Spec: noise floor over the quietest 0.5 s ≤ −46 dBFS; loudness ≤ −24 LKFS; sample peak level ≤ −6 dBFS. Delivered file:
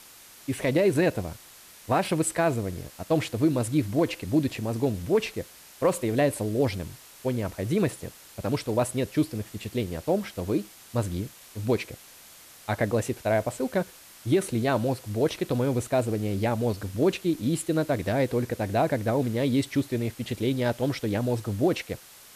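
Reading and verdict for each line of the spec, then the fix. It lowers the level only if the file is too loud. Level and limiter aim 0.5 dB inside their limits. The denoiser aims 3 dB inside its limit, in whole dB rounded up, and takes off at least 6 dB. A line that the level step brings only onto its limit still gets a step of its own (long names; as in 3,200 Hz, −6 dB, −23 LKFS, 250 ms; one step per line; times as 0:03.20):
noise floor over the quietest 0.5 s −50 dBFS: in spec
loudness −27.0 LKFS: in spec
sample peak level −13.0 dBFS: in spec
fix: no processing needed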